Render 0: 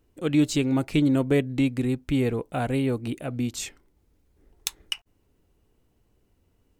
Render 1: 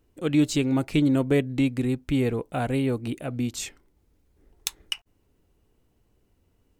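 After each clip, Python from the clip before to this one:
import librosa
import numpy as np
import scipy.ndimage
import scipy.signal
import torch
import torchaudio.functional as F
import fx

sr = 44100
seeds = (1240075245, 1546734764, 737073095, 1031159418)

y = x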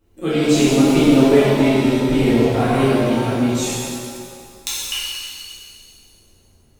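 y = fx.rev_shimmer(x, sr, seeds[0], rt60_s=2.0, semitones=7, shimmer_db=-8, drr_db=-11.0)
y = F.gain(torch.from_numpy(y), -1.5).numpy()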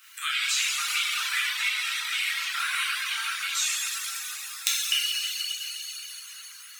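y = scipy.signal.sosfilt(scipy.signal.butter(8, 1300.0, 'highpass', fs=sr, output='sos'), x)
y = fx.dereverb_blind(y, sr, rt60_s=0.63)
y = fx.band_squash(y, sr, depth_pct=70)
y = F.gain(torch.from_numpy(y), 2.5).numpy()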